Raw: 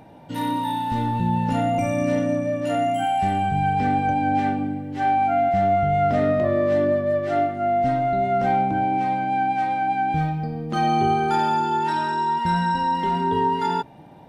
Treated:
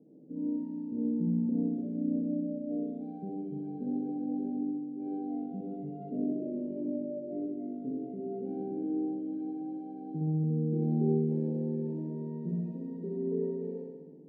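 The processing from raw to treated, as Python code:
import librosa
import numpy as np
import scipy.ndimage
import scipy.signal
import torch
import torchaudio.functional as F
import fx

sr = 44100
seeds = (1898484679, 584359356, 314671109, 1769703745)

y = fx.tracing_dist(x, sr, depth_ms=0.4)
y = scipy.signal.sosfilt(scipy.signal.ellip(3, 1.0, 50, [160.0, 450.0], 'bandpass', fs=sr, output='sos'), y)
y = fx.low_shelf(y, sr, hz=260.0, db=-6.5)
y = fx.room_flutter(y, sr, wall_m=11.0, rt60_s=1.4)
y = F.gain(torch.from_numpy(y), -5.0).numpy()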